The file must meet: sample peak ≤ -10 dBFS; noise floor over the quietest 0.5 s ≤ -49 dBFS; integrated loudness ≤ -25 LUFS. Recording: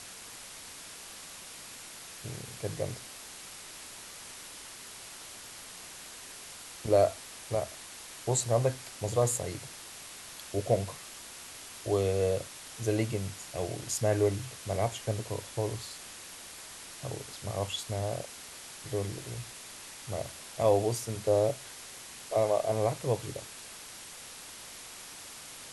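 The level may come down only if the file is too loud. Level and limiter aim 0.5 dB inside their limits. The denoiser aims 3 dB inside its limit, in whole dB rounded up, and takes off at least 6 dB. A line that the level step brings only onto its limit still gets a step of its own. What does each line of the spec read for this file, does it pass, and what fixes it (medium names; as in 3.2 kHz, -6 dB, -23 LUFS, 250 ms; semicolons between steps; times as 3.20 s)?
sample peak -12.0 dBFS: pass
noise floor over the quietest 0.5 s -47 dBFS: fail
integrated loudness -34.0 LUFS: pass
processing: noise reduction 6 dB, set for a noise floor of -47 dBFS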